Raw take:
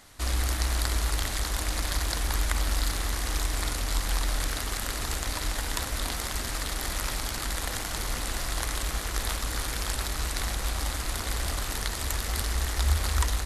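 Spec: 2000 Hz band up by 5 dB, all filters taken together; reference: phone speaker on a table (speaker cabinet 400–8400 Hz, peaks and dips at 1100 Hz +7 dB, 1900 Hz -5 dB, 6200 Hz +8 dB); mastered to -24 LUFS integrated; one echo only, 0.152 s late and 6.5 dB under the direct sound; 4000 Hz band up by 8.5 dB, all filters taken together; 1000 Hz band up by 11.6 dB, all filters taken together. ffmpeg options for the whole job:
-af "highpass=f=400:w=0.5412,highpass=f=400:w=1.3066,equalizer=f=1.1k:t=q:w=4:g=7,equalizer=f=1.9k:t=q:w=4:g=-5,equalizer=f=6.2k:t=q:w=4:g=8,lowpass=f=8.4k:w=0.5412,lowpass=f=8.4k:w=1.3066,equalizer=f=1k:t=o:g=8,equalizer=f=2k:t=o:g=4,equalizer=f=4k:t=o:g=8,aecho=1:1:152:0.473"

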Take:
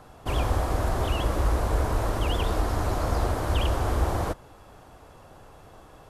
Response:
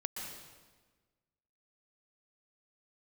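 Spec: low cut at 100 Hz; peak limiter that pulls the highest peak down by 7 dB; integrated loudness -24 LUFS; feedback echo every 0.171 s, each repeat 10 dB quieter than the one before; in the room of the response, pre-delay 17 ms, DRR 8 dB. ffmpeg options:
-filter_complex "[0:a]highpass=100,alimiter=limit=-22dB:level=0:latency=1,aecho=1:1:171|342|513|684:0.316|0.101|0.0324|0.0104,asplit=2[a][b];[1:a]atrim=start_sample=2205,adelay=17[c];[b][c]afir=irnorm=-1:irlink=0,volume=-9dB[d];[a][d]amix=inputs=2:normalize=0,volume=7dB"

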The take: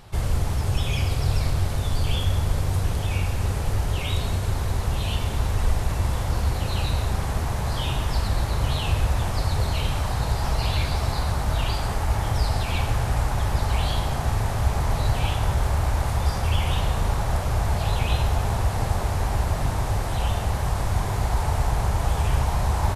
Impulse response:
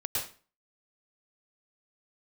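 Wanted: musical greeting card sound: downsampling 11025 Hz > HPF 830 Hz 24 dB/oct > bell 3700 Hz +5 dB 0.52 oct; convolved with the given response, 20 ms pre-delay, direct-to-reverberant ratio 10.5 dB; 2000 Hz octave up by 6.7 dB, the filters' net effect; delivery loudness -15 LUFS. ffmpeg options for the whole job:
-filter_complex "[0:a]equalizer=f=2k:t=o:g=8,asplit=2[a][b];[1:a]atrim=start_sample=2205,adelay=20[c];[b][c]afir=irnorm=-1:irlink=0,volume=-15.5dB[d];[a][d]amix=inputs=2:normalize=0,aresample=11025,aresample=44100,highpass=f=830:w=0.5412,highpass=f=830:w=1.3066,equalizer=f=3.7k:t=o:w=0.52:g=5,volume=13.5dB"

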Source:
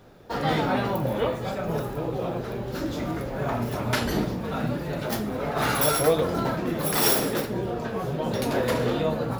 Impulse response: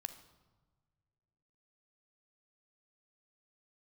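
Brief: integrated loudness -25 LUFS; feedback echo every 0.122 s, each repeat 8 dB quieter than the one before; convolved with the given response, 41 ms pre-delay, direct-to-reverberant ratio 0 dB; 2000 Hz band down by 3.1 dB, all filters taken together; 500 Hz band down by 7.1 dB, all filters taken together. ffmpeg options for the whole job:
-filter_complex "[0:a]equalizer=f=500:t=o:g=-8.5,equalizer=f=2k:t=o:g=-3.5,aecho=1:1:122|244|366|488|610:0.398|0.159|0.0637|0.0255|0.0102,asplit=2[a][b];[1:a]atrim=start_sample=2205,adelay=41[c];[b][c]afir=irnorm=-1:irlink=0,volume=2.5dB[d];[a][d]amix=inputs=2:normalize=0,volume=-0.5dB"

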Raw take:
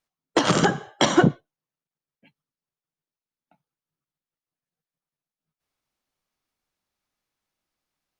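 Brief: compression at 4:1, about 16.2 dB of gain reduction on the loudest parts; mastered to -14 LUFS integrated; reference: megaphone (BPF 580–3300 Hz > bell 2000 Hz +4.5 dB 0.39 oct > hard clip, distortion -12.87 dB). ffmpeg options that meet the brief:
-af "acompressor=threshold=-32dB:ratio=4,highpass=580,lowpass=3.3k,equalizer=f=2k:t=o:w=0.39:g=4.5,asoftclip=type=hard:threshold=-26dB,volume=25dB"

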